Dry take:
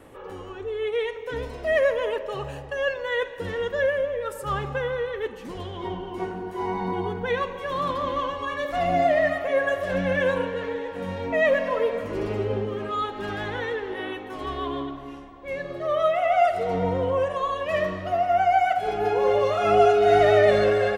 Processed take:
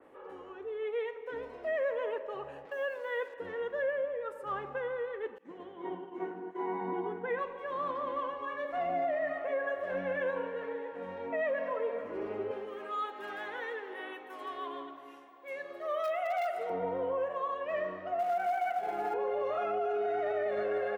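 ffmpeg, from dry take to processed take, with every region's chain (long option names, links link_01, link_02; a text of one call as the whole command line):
ffmpeg -i in.wav -filter_complex "[0:a]asettb=1/sr,asplit=3[link_01][link_02][link_03];[link_01]atrim=end=2.654[link_04];[link_02]atrim=start=2.65:end=3.34,asetpts=PTS-STARTPTS,afade=type=in:duration=0.004:curve=qsin,afade=type=out:start_time=0.686:duration=0.004:curve=qsin,highpass=frequency=150:width=0.5412,highpass=frequency=150:width=1.3066,acrusher=bits=6:mix=0:aa=0.5[link_05];[link_03]atrim=start=3.336[link_06];[link_04][link_05]acrossfade=duration=0.004:curve1=hsin:curve2=qsin[link_07];[link_07][link_06]acrossfade=duration=0.004:curve1=qsin:curve2=hsin,asettb=1/sr,asplit=3[link_08][link_09][link_10];[link_08]atrim=end=5.384[link_11];[link_09]atrim=start=5.38:end=7.39,asetpts=PTS-STARTPTS,afade=type=in:duration=0.004:curve=qsin,afade=type=out:start_time=2.006:duration=0.004:curve=qsin,acrossover=split=2600[link_12][link_13];[link_13]acompressor=threshold=-49dB:ratio=4:attack=1:release=60[link_14];[link_12][link_14]amix=inputs=2:normalize=0,agate=range=-33dB:threshold=-31dB:ratio=3:release=100:detection=peak,highpass=frequency=110:width=0.5412,highpass=frequency=110:width=1.3066,equalizer=frequency=160:width_type=q:width=4:gain=8,equalizer=frequency=310:width_type=q:width=4:gain=9,equalizer=frequency=1900:width_type=q:width=4:gain=4,equalizer=frequency=4800:width_type=q:width=4:gain=-9,lowpass=frequency=8100:width=0.5412,lowpass=frequency=8100:width=1.3066[link_15];[link_10]atrim=start=7.386[link_16];[link_11][link_15]acrossfade=duration=0.004:curve1=hsin:curve2=qsin[link_17];[link_17][link_16]acrossfade=duration=0.004:curve1=qsin:curve2=hsin,asettb=1/sr,asplit=3[link_18][link_19][link_20];[link_18]atrim=end=12.514[link_21];[link_19]atrim=start=12.51:end=16.7,asetpts=PTS-STARTPTS,afade=type=in:duration=0.004:curve=qsin,afade=type=out:start_time=4.186:duration=0.004:curve=qsin,aeval=exprs='0.178*(abs(mod(val(0)/0.178+3,4)-2)-1)':channel_layout=same,aemphasis=mode=production:type=riaa[link_22];[link_20]atrim=start=16.696[link_23];[link_21][link_22]acrossfade=duration=0.004:curve1=hsin:curve2=qsin[link_24];[link_24][link_23]acrossfade=duration=0.004:curve1=qsin:curve2=hsin,asettb=1/sr,asplit=3[link_25][link_26][link_27];[link_25]atrim=end=18.194[link_28];[link_26]atrim=start=18.19:end=19.14,asetpts=PTS-STARTPTS,afade=type=in:duration=0.004:curve=qsin,afade=type=out:start_time=0.946:duration=0.004:curve=qsin,aecho=1:1:5.8:0.7,atrim=end_sample=41895,acrusher=bits=3:mode=log:mix=0:aa=0.000001[link_29];[link_27]atrim=start=19.136[link_30];[link_28][link_29]acrossfade=duration=0.004:curve1=hsin:curve2=qsin[link_31];[link_31][link_30]acrossfade=duration=0.004:curve1=qsin:curve2=hsin,acrossover=split=240 2500:gain=0.112 1 0.224[link_32][link_33][link_34];[link_32][link_33][link_34]amix=inputs=3:normalize=0,alimiter=limit=-17.5dB:level=0:latency=1:release=57,adynamicequalizer=threshold=0.00562:dfrequency=3000:dqfactor=0.7:tfrequency=3000:tqfactor=0.7:attack=5:release=100:ratio=0.375:range=2:mode=cutabove:tftype=highshelf,volume=-7.5dB" out.wav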